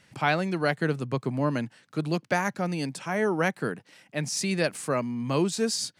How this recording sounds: noise floor -64 dBFS; spectral tilt -4.5 dB/oct

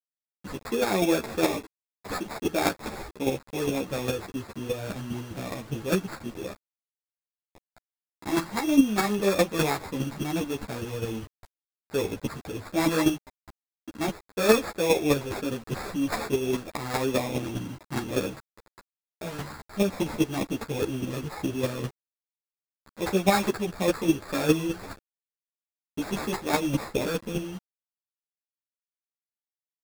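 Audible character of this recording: aliases and images of a low sample rate 3000 Hz, jitter 0%; chopped level 4.9 Hz, depth 60%, duty 10%; a quantiser's noise floor 8-bit, dither none; a shimmering, thickened sound

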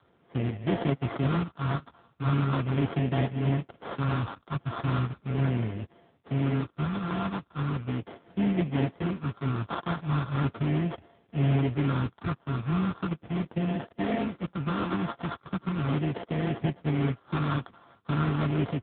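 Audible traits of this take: a buzz of ramps at a fixed pitch in blocks of 64 samples; phasing stages 6, 0.38 Hz, lowest notch 540–1200 Hz; aliases and images of a low sample rate 2500 Hz, jitter 20%; AMR-NB

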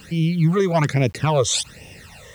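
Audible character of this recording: phasing stages 12, 1.2 Hz, lowest notch 250–1400 Hz; a quantiser's noise floor 10-bit, dither none

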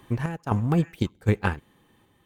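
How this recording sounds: random-step tremolo 3.9 Hz, depth 70%

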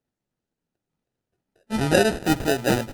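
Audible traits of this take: aliases and images of a low sample rate 1100 Hz, jitter 0%; Opus

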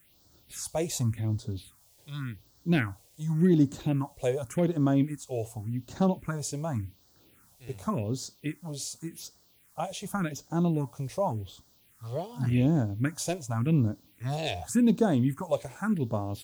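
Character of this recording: a quantiser's noise floor 10-bit, dither triangular; phasing stages 4, 0.88 Hz, lowest notch 220–2400 Hz

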